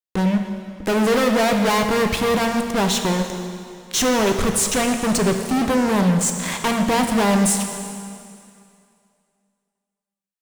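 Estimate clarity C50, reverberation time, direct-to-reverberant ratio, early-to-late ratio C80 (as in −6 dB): 6.0 dB, 2.4 s, 4.5 dB, 7.0 dB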